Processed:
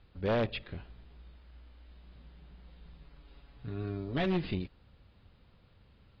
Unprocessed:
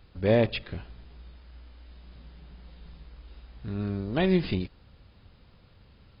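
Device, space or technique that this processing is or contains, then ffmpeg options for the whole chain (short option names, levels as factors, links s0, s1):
synthesiser wavefolder: -filter_complex "[0:a]aeval=exprs='0.141*(abs(mod(val(0)/0.141+3,4)-2)-1)':c=same,lowpass=f=4400:w=0.5412,lowpass=f=4400:w=1.3066,asettb=1/sr,asplit=3[s0][s1][s2];[s0]atrim=end=3.014[s3];[s1]atrim=start=3.01:end=4.26,asetpts=PTS-STARTPTS,afade=t=in:d=0.004:c=qsin,afade=t=out:st=1.246:d=0.004:c=qsin,aecho=1:1:7.1:0.63,atrim=end_sample=55125[s4];[s2]atrim=start=4.256[s5];[s3][s4]acrossfade=d=0.004:c1=hsin:c2=qsin[s6];[s6][s5]acrossfade=d=0.004:c1=qsin:c2=hsin,volume=0.531"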